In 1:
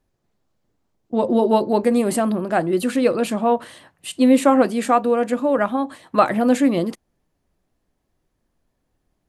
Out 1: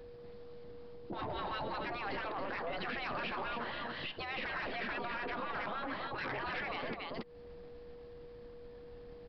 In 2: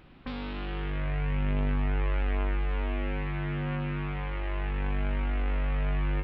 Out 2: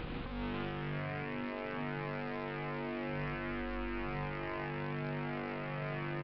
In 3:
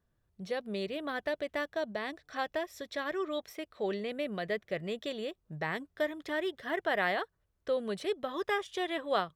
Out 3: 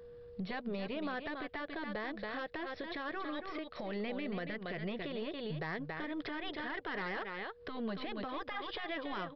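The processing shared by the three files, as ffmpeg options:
-filter_complex "[0:a]aeval=exprs='if(lt(val(0),0),0.708*val(0),val(0))':c=same,afftfilt=real='re*lt(hypot(re,im),0.141)':imag='im*lt(hypot(re,im),0.141)':win_size=1024:overlap=0.75,asplit=2[a][b];[b]aecho=0:1:279:0.335[c];[a][c]amix=inputs=2:normalize=0,aeval=exprs='val(0)+0.000501*sin(2*PI*480*n/s)':c=same,acrossover=split=2900[d][e];[e]acompressor=threshold=-56dB:ratio=4:attack=1:release=60[f];[d][f]amix=inputs=2:normalize=0,aresample=11025,asoftclip=type=tanh:threshold=-30.5dB,aresample=44100,acompressor=threshold=-49dB:ratio=12,alimiter=level_in=23.5dB:limit=-24dB:level=0:latency=1:release=228,volume=-23.5dB,volume=16.5dB"

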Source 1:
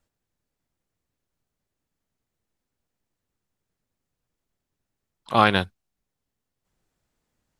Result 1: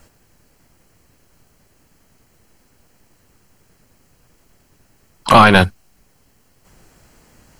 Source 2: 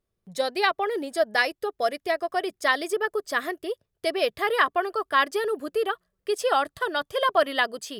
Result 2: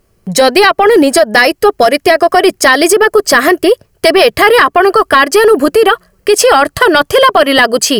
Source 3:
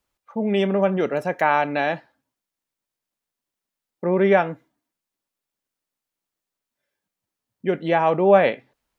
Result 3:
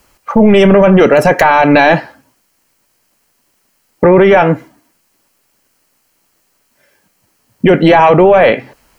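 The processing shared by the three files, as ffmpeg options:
-af "bandreject=f=3.6k:w=5.8,acompressor=threshold=-24dB:ratio=8,apsyclip=28dB,volume=-1.5dB"

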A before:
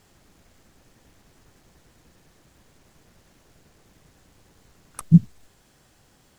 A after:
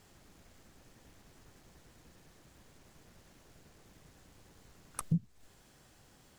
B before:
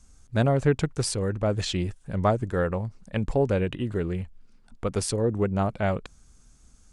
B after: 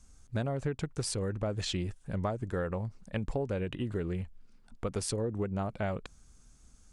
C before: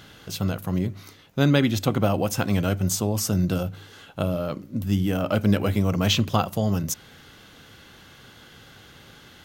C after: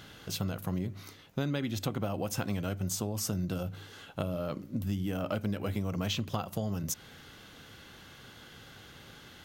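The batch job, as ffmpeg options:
-af "acompressor=threshold=-26dB:ratio=6,volume=-3dB"

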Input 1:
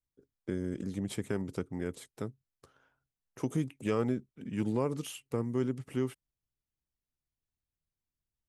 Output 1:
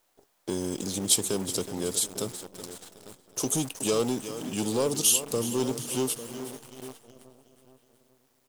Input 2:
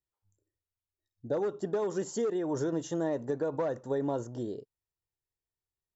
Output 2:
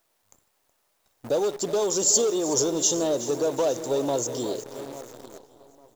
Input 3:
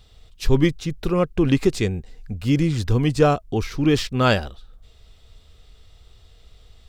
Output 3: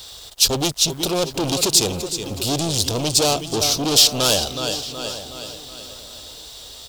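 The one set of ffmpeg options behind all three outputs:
-filter_complex "[0:a]highpass=44,acontrast=83,asplit=2[a][b];[b]aecho=0:1:371|742|1113|1484|1855:0.178|0.0889|0.0445|0.0222|0.0111[c];[a][c]amix=inputs=2:normalize=0,asoftclip=type=tanh:threshold=-18.5dB,highshelf=f=2.1k:g=-5,aexciter=amount=9.8:drive=9.9:freq=3.1k,asplit=2[d][e];[e]adelay=849,lowpass=f=2.7k:p=1,volume=-14dB,asplit=2[f][g];[g]adelay=849,lowpass=f=2.7k:p=1,volume=0.27,asplit=2[h][i];[i]adelay=849,lowpass=f=2.7k:p=1,volume=0.27[j];[f][h][j]amix=inputs=3:normalize=0[k];[d][k]amix=inputs=2:normalize=0,acrusher=bits=7:dc=4:mix=0:aa=0.000001,equalizer=f=660:t=o:w=2.4:g=11,volume=-7.5dB"

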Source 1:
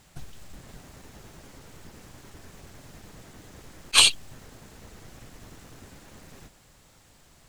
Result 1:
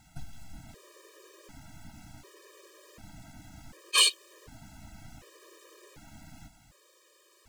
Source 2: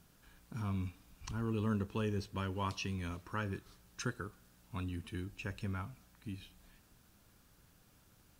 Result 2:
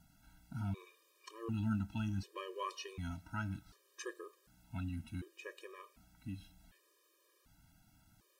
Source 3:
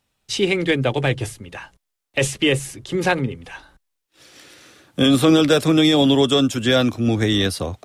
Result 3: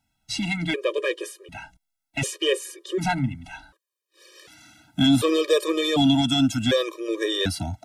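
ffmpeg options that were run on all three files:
-af "acontrast=68,afftfilt=real='re*gt(sin(2*PI*0.67*pts/sr)*(1-2*mod(floor(b*sr/1024/320),2)),0)':imag='im*gt(sin(2*PI*0.67*pts/sr)*(1-2*mod(floor(b*sr/1024/320),2)),0)':win_size=1024:overlap=0.75,volume=-7dB"

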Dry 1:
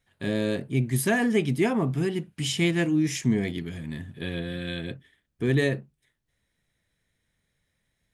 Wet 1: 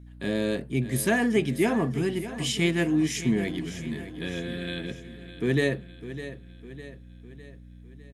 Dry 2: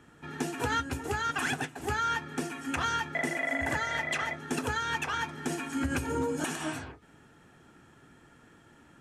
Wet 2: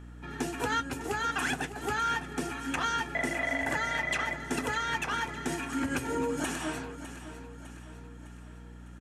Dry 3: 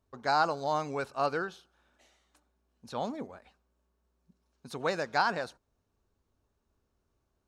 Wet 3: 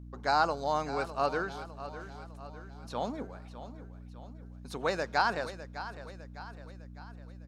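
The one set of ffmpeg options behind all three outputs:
-af "highpass=140,aeval=exprs='val(0)+0.00562*(sin(2*PI*60*n/s)+sin(2*PI*2*60*n/s)/2+sin(2*PI*3*60*n/s)/3+sin(2*PI*4*60*n/s)/4+sin(2*PI*5*60*n/s)/5)':c=same,aecho=1:1:605|1210|1815|2420|3025:0.224|0.112|0.056|0.028|0.014"

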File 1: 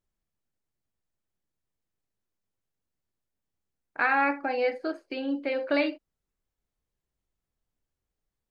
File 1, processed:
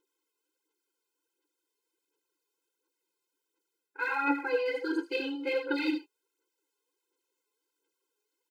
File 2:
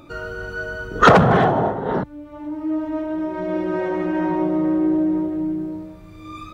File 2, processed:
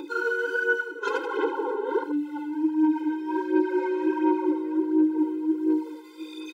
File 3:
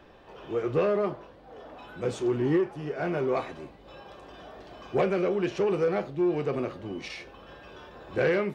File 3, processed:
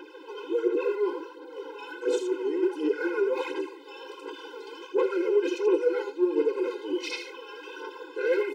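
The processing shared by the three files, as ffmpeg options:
-af "asubboost=boost=10.5:cutoff=60,areverse,acompressor=threshold=-32dB:ratio=8,areverse,equalizer=f=810:t=o:w=0.24:g=-8.5,bandreject=f=1.9k:w=6.9,aecho=1:1:81:0.422,aphaser=in_gain=1:out_gain=1:delay=4.9:decay=0.57:speed=1.4:type=sinusoidal,afftfilt=real='re*eq(mod(floor(b*sr/1024/270),2),1)':imag='im*eq(mod(floor(b*sr/1024/270),2),1)':win_size=1024:overlap=0.75,volume=8.5dB"

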